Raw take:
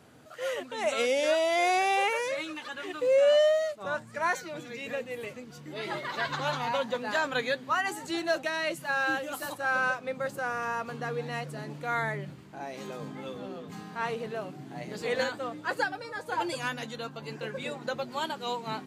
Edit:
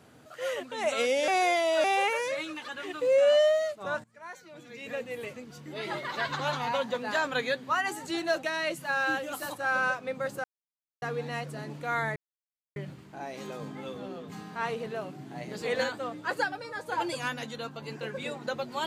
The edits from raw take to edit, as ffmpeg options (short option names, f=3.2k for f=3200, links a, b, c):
-filter_complex "[0:a]asplit=7[a][b][c][d][e][f][g];[a]atrim=end=1.282[h];[b]atrim=start=1.278:end=1.842,asetpts=PTS-STARTPTS,areverse[i];[c]atrim=start=1.838:end=4.04,asetpts=PTS-STARTPTS,afade=t=out:st=2.198:d=0.004:c=hsin:silence=0.112202[j];[d]atrim=start=4.04:end=10.44,asetpts=PTS-STARTPTS,afade=t=in:d=0.99:c=qua:silence=0.112202,afade=t=out:st=6.396:d=0.004:c=hsin[k];[e]atrim=start=10.44:end=11.02,asetpts=PTS-STARTPTS,volume=0[l];[f]atrim=start=11.02:end=12.16,asetpts=PTS-STARTPTS,afade=t=in:d=0.004:c=hsin,afade=t=out:st=1.136:d=0.004:c=hsin,apad=pad_dur=0.6[m];[g]atrim=start=12.16,asetpts=PTS-STARTPTS,afade=t=in:d=0.004:c=hsin[n];[h][i]acrossfade=d=0.004:c1=hsin:c2=hsin[o];[j][k][l][m][n]concat=n=5:v=0:a=1[p];[o][p]acrossfade=d=0.004:c1=hsin:c2=hsin"